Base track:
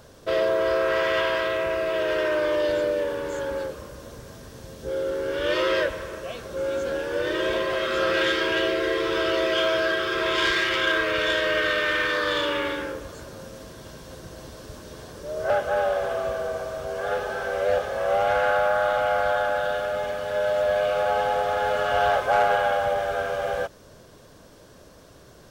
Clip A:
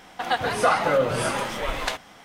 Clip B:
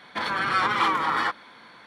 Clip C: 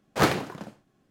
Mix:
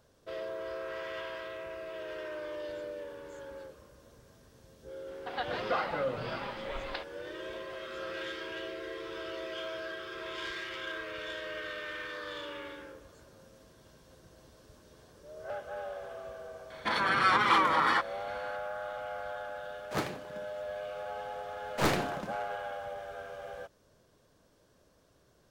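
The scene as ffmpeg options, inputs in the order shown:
-filter_complex "[3:a]asplit=2[a][b];[0:a]volume=-16.5dB[c];[1:a]aresample=11025,aresample=44100[d];[b]aeval=exprs='(tanh(12.6*val(0)+0.45)-tanh(0.45))/12.6':c=same[e];[d]atrim=end=2.24,asetpts=PTS-STARTPTS,volume=-12dB,afade=t=in:d=0.004:c=hsin,afade=t=out:st=2.236:d=0.004:c=hsin,adelay=5070[f];[2:a]atrim=end=1.86,asetpts=PTS-STARTPTS,volume=-2dB,afade=t=in:d=0.004:c=hsin,afade=t=out:st=1.856:d=0.004:c=hsin,adelay=16700[g];[a]atrim=end=1.1,asetpts=PTS-STARTPTS,volume=-12dB,afade=t=in:d=0.004:c=hsin,afade=t=out:st=1.096:d=0.004:c=hsin,adelay=19750[h];[e]atrim=end=1.1,asetpts=PTS-STARTPTS,volume=-0.5dB,afade=t=in:d=0.004:c=hsin,afade=t=out:st=1.096:d=0.004:c=hsin,adelay=21620[i];[c][f][g][h][i]amix=inputs=5:normalize=0"

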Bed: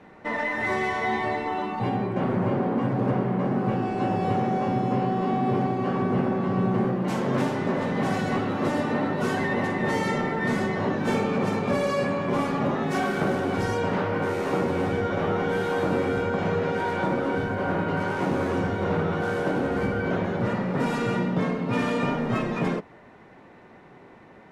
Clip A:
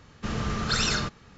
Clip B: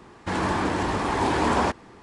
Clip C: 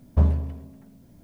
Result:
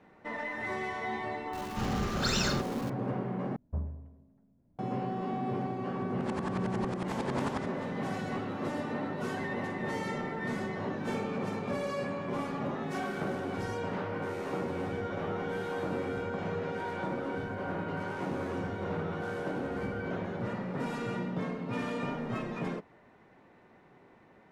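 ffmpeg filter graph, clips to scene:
-filter_complex "[0:a]volume=-9.5dB[a];[1:a]aeval=exprs='val(0)+0.5*0.0168*sgn(val(0))':c=same[b];[3:a]lowpass=1.3k[c];[2:a]aeval=exprs='val(0)*pow(10,-25*if(lt(mod(-11*n/s,1),2*abs(-11)/1000),1-mod(-11*n/s,1)/(2*abs(-11)/1000),(mod(-11*n/s,1)-2*abs(-11)/1000)/(1-2*abs(-11)/1000))/20)':c=same[d];[a]asplit=2[e][f];[e]atrim=end=3.564[g];[c]atrim=end=1.23,asetpts=PTS-STARTPTS,volume=-16dB[h];[f]atrim=start=4.786[i];[b]atrim=end=1.37,asetpts=PTS-STARTPTS,volume=-6dB,afade=t=in:d=0.004:c=hsin,afade=t=out:st=1.366:d=0.004:c=hsin,adelay=1530[j];[d]atrim=end=2.02,asetpts=PTS-STARTPTS,volume=-8dB,afade=t=in:d=0.004:c=hsin,afade=t=out:st=2.016:d=0.004:c=hsin,adelay=5940[k];[g][h]acrossfade=d=0.004:c1=hsin:c2=hsin[l];[l][i]acrossfade=d=0.004:c1=hsin:c2=hsin[m];[m][j][k]amix=inputs=3:normalize=0"

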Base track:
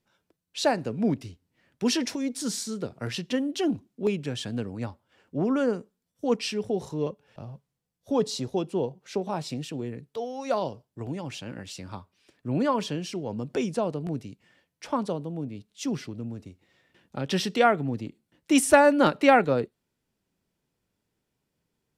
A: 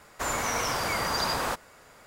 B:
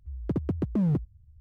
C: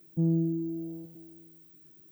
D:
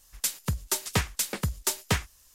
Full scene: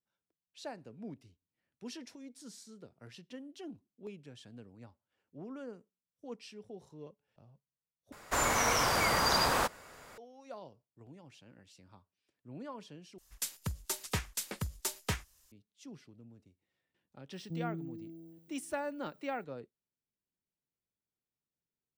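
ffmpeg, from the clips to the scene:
-filter_complex "[0:a]volume=-20dB,asplit=3[a][b][c];[a]atrim=end=8.124[d];[1:a]atrim=end=2.06[e];[b]atrim=start=10.176:end=13.184[f];[4:a]atrim=end=2.34,asetpts=PTS-STARTPTS,volume=-8.5dB[g];[c]atrim=start=15.516[h];[3:a]atrim=end=2.11,asetpts=PTS-STARTPTS,volume=-13dB,afade=t=in:d=0.004:c=hsin,afade=t=out:st=2.106:d=0.004:c=hsin,adelay=17330[i];[d][e]acrossfade=d=0.004:c1=hsin:c2=hsin[j];[j][f]acrossfade=d=0.004:c1=hsin:c2=hsin[k];[k][g]acrossfade=d=0.004:c1=hsin:c2=hsin[l];[l][h]acrossfade=d=0.004:c1=hsin:c2=hsin[m];[m][i]amix=inputs=2:normalize=0"

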